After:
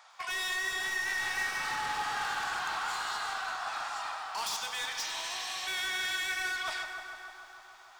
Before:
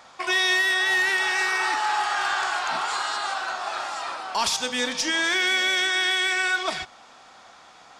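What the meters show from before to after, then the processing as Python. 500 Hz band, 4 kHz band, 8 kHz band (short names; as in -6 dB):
-15.0 dB, -10.5 dB, -8.0 dB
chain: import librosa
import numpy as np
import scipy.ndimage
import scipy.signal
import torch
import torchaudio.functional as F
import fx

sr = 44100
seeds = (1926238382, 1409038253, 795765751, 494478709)

y = fx.spec_repair(x, sr, seeds[0], start_s=5.07, length_s=0.58, low_hz=1300.0, high_hz=4300.0, source='before')
y = scipy.signal.sosfilt(scipy.signal.butter(4, 730.0, 'highpass', fs=sr, output='sos'), y)
y = np.clip(y, -10.0 ** (-25.5 / 20.0), 10.0 ** (-25.5 / 20.0))
y = fx.echo_bbd(y, sr, ms=150, stages=2048, feedback_pct=75, wet_db=-8.0)
y = fx.echo_crushed(y, sr, ms=101, feedback_pct=80, bits=9, wet_db=-12.5)
y = y * 10.0 ** (-7.0 / 20.0)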